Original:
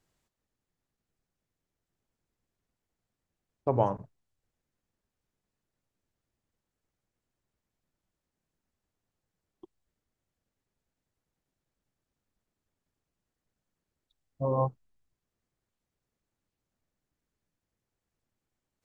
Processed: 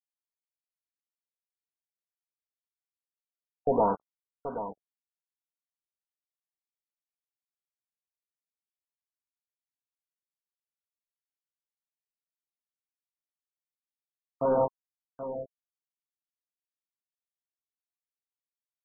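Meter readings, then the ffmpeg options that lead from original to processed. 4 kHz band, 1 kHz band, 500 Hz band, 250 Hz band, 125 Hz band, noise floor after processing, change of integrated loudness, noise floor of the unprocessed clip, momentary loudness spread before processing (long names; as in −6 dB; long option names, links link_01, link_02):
can't be measured, +3.5 dB, +4.0 dB, +3.0 dB, −9.5 dB, below −85 dBFS, +0.5 dB, below −85 dBFS, 8 LU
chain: -filter_complex "[0:a]aecho=1:1:4.3:0.81,asplit=2[link_01][link_02];[link_02]aeval=exprs='sgn(val(0))*max(abs(val(0))-0.0112,0)':channel_layout=same,volume=-8.5dB[link_03];[link_01][link_03]amix=inputs=2:normalize=0,asuperstop=centerf=1600:order=20:qfactor=2.5,acrusher=bits=4:mix=0:aa=0.5,asplit=2[link_04][link_05];[link_05]highpass=frequency=720:poles=1,volume=19dB,asoftclip=type=tanh:threshold=-9.5dB[link_06];[link_04][link_06]amix=inputs=2:normalize=0,lowpass=frequency=1000:poles=1,volume=-6dB,aecho=1:1:778:0.282,afftfilt=real='re*lt(b*sr/1024,670*pow(1600/670,0.5+0.5*sin(2*PI*1.6*pts/sr)))':imag='im*lt(b*sr/1024,670*pow(1600/670,0.5+0.5*sin(2*PI*1.6*pts/sr)))':win_size=1024:overlap=0.75,volume=-4dB"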